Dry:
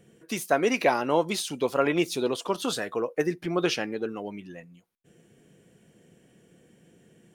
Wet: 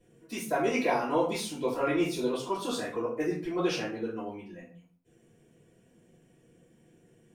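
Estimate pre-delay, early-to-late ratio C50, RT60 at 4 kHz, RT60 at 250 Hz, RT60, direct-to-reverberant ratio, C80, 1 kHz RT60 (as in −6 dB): 3 ms, 5.5 dB, 0.30 s, 0.60 s, 0.50 s, −11.0 dB, 10.5 dB, 0.50 s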